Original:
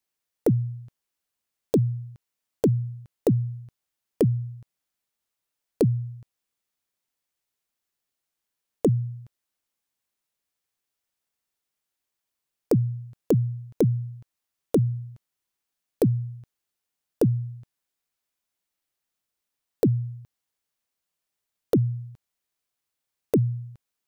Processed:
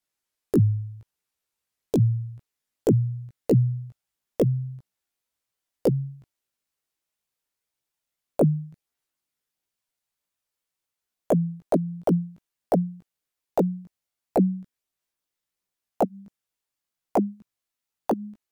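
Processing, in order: gliding tape speed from 85% -> 175%; chorus voices 2, 0.83 Hz, delay 17 ms, depth 1.6 ms; trim +3 dB

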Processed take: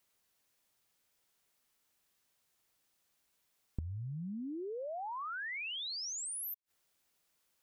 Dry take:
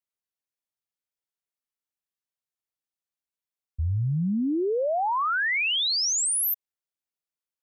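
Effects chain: inverted gate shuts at -39 dBFS, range -31 dB; trim +15.5 dB

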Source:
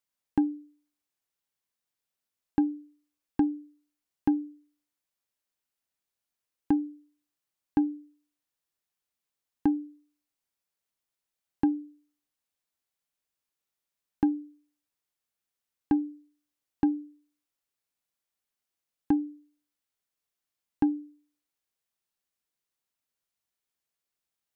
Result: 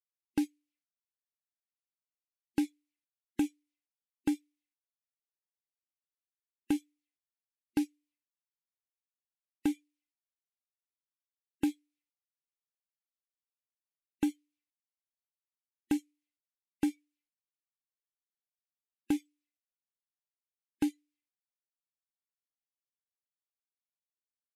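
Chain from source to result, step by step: CVSD coder 64 kbps; spectral noise reduction 29 dB; resonant high shelf 1.6 kHz +11.5 dB, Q 3; trim -4.5 dB

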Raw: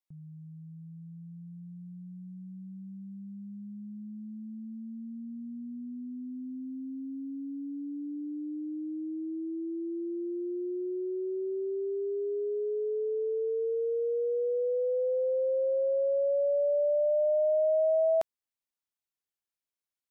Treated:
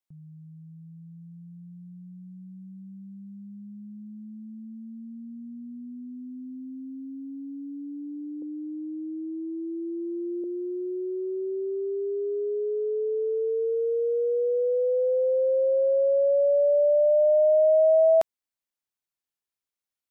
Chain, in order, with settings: 8.42–10.44 s: high-order bell 680 Hz +16 dB 1.3 oct; upward expansion 1.5:1, over -38 dBFS; trim +7 dB

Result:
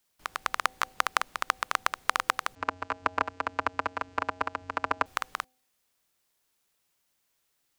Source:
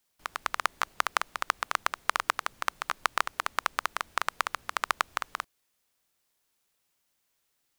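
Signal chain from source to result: de-hum 255.2 Hz, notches 3; 2.55–5.06 s: vocoder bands 8, square 91 Hz; trim +1 dB

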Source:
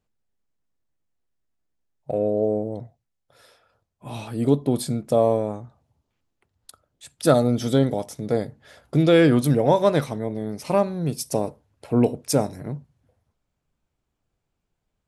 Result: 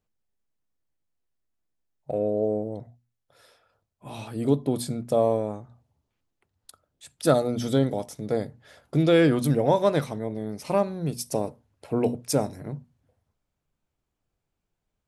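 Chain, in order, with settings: hum notches 60/120/180/240 Hz; trim -3 dB

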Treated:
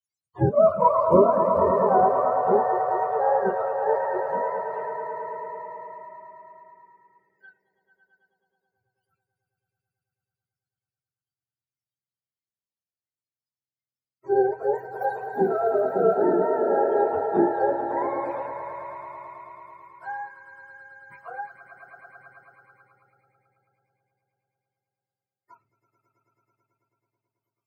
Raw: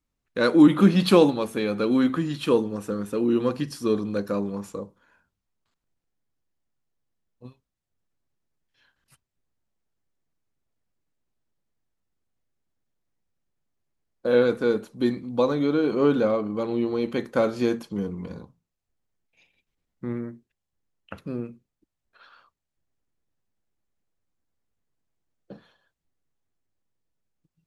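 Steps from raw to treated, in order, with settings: spectrum inverted on a logarithmic axis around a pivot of 440 Hz; 14.75–15.21 s: tilt EQ +4 dB/octave; echo with a slow build-up 109 ms, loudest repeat 5, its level -9 dB; spectral noise reduction 21 dB; trim +1 dB

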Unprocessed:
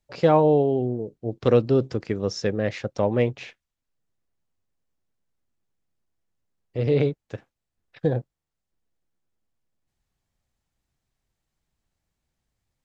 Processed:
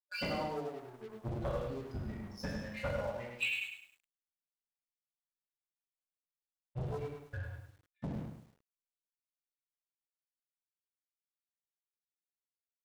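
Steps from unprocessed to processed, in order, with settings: expander on every frequency bin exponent 3; distance through air 400 m; compression 2:1, threshold -38 dBFS, peak gain reduction 12 dB; inverted gate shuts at -36 dBFS, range -28 dB; gated-style reverb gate 260 ms falling, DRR -6.5 dB; waveshaping leveller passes 3; resonant low shelf 530 Hz -6 dB, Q 1.5; bit-crushed delay 103 ms, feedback 35%, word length 12-bit, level -6.5 dB; trim +7 dB

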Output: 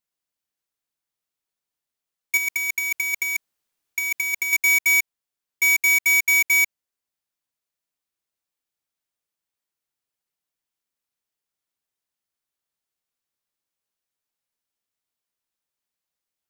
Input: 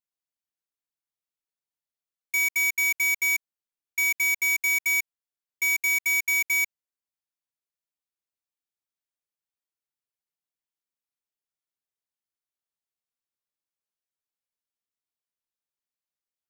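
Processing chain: 2.37–4.53 s: compressor with a negative ratio -28 dBFS, ratio -0.5; trim +6 dB

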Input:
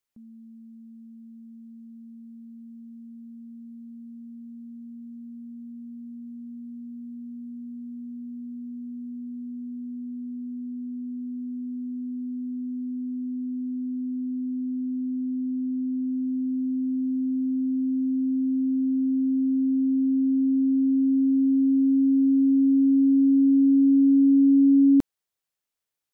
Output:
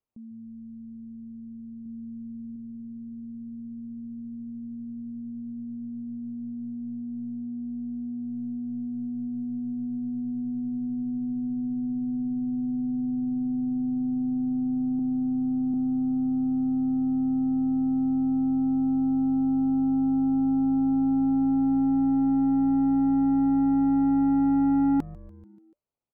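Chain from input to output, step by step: local Wiener filter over 25 samples; 14.99–15.74 s: high-pass 120 Hz 12 dB/octave; in parallel at 0 dB: compression 12:1, threshold -28 dBFS, peak gain reduction 12.5 dB; on the sum: saturation -18 dBFS, distortion -14 dB; 1.83–2.56 s: doubling 27 ms -6.5 dB; frequency-shifting echo 145 ms, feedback 63%, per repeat -120 Hz, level -20 dB; trim -1.5 dB

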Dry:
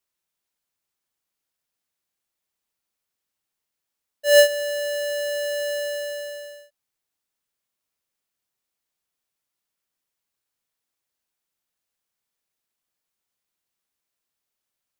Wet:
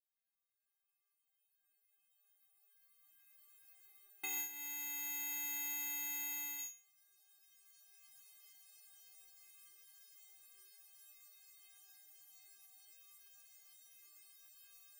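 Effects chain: cycle switcher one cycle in 2, inverted; recorder AGC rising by 8.2 dB/s; amplifier tone stack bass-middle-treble 5-5-5; compression 10:1, threshold -28 dBFS, peak gain reduction 10 dB; peaking EQ 5.7 kHz -14 dB 1.1 oct, from 6.58 s -2 dB; inharmonic resonator 380 Hz, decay 0.75 s, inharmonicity 0.008; trim +16.5 dB

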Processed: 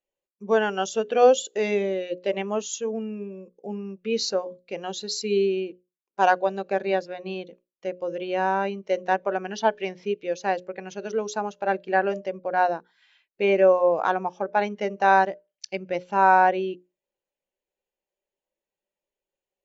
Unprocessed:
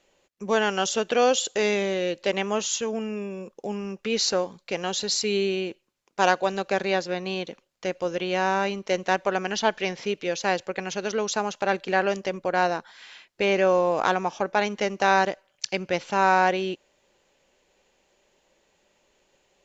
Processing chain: hum notches 60/120/180/240/300/360/420/480/540/600 Hz; spectral contrast expander 1.5:1

